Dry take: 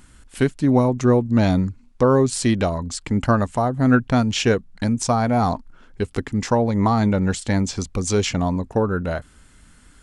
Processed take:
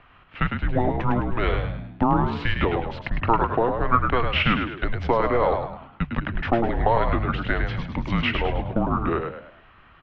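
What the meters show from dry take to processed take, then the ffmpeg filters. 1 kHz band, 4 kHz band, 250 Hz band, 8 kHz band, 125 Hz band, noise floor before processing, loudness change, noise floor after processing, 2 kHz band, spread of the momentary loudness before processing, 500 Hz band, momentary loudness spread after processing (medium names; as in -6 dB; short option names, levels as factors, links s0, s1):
+1.0 dB, -2.0 dB, -7.5 dB, under -30 dB, -5.0 dB, -51 dBFS, -3.5 dB, -52 dBFS, +2.0 dB, 8 LU, -4.0 dB, 8 LU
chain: -filter_complex "[0:a]bandreject=f=63.14:t=h:w=4,bandreject=f=126.28:t=h:w=4,bandreject=f=189.42:t=h:w=4,bandreject=f=252.56:t=h:w=4,bandreject=f=315.7:t=h:w=4,bandreject=f=378.84:t=h:w=4,acrossover=split=130|950[s0][s1][s2];[s1]acompressor=threshold=0.0501:ratio=6[s3];[s0][s3][s2]amix=inputs=3:normalize=0,acrusher=bits=8:mode=log:mix=0:aa=0.000001,highpass=f=200:t=q:w=0.5412,highpass=f=200:t=q:w=1.307,lowpass=f=3200:t=q:w=0.5176,lowpass=f=3200:t=q:w=0.7071,lowpass=f=3200:t=q:w=1.932,afreqshift=-240,asplit=6[s4][s5][s6][s7][s8][s9];[s5]adelay=104,afreqshift=65,volume=0.501[s10];[s6]adelay=208,afreqshift=130,volume=0.191[s11];[s7]adelay=312,afreqshift=195,volume=0.0724[s12];[s8]adelay=416,afreqshift=260,volume=0.0275[s13];[s9]adelay=520,afreqshift=325,volume=0.0105[s14];[s4][s10][s11][s12][s13][s14]amix=inputs=6:normalize=0,volume=1.68"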